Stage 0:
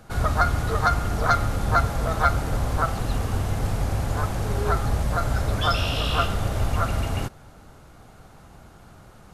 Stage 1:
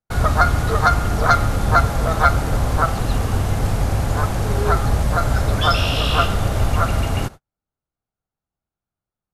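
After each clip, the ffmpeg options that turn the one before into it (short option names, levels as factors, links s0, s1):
-af "agate=range=0.00447:threshold=0.0158:ratio=16:detection=peak,volume=1.88"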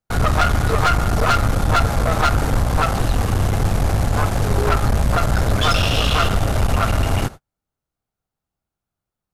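-af "aeval=exprs='(tanh(7.94*val(0)+0.5)-tanh(0.5))/7.94':c=same,volume=1.88"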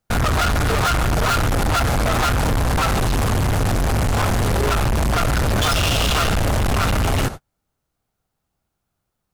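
-af "volume=17.8,asoftclip=hard,volume=0.0562,volume=2.51"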